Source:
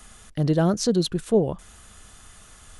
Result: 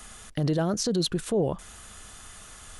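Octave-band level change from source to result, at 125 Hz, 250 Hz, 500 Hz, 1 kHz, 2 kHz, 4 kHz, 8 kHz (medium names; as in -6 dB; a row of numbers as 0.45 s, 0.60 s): -4.5 dB, -5.0 dB, -4.5 dB, -3.5 dB, -1.5 dB, 0.0 dB, 0.0 dB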